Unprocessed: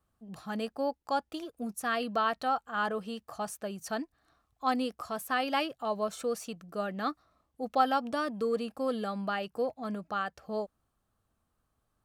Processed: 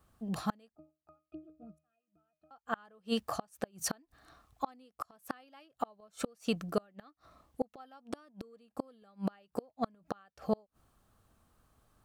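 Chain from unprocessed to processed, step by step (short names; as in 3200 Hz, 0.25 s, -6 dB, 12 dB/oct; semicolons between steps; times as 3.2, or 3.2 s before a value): flipped gate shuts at -28 dBFS, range -36 dB; 0.75–2.51 octave resonator D#, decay 0.29 s; gain +9 dB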